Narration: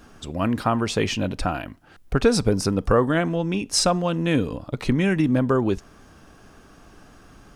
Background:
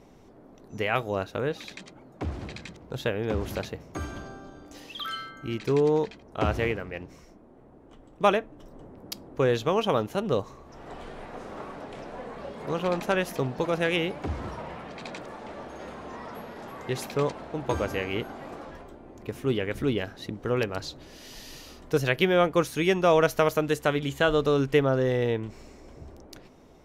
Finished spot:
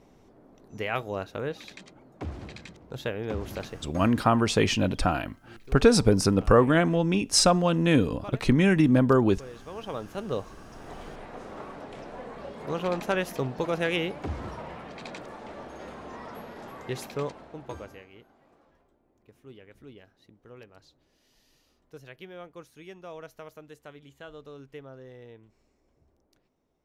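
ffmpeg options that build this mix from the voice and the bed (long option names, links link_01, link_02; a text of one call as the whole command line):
ffmpeg -i stem1.wav -i stem2.wav -filter_complex "[0:a]adelay=3600,volume=0dB[link_01];[1:a]volume=15dB,afade=type=out:start_time=3.79:duration=0.46:silence=0.149624,afade=type=in:start_time=9.63:duration=1.1:silence=0.11885,afade=type=out:start_time=16.66:duration=1.42:silence=0.0944061[link_02];[link_01][link_02]amix=inputs=2:normalize=0" out.wav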